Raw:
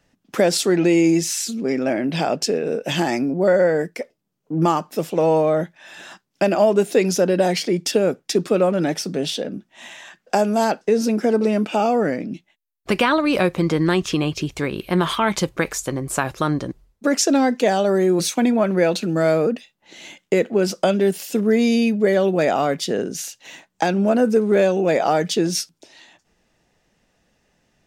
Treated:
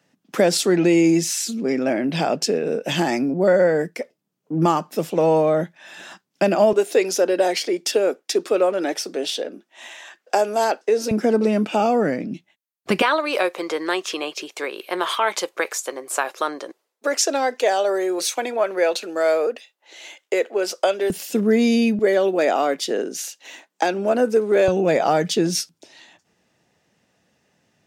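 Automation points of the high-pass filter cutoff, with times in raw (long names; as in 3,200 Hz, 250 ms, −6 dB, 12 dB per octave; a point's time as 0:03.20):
high-pass filter 24 dB per octave
130 Hz
from 0:06.73 320 Hz
from 0:11.11 100 Hz
from 0:13.02 410 Hz
from 0:21.10 110 Hz
from 0:21.99 270 Hz
from 0:24.68 85 Hz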